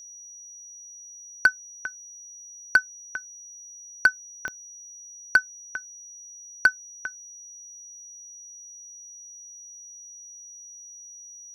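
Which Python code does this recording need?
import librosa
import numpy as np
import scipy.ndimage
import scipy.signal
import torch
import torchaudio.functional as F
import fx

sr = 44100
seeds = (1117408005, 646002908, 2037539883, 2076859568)

y = fx.fix_declip(x, sr, threshold_db=-9.0)
y = fx.fix_declick_ar(y, sr, threshold=10.0)
y = fx.notch(y, sr, hz=5800.0, q=30.0)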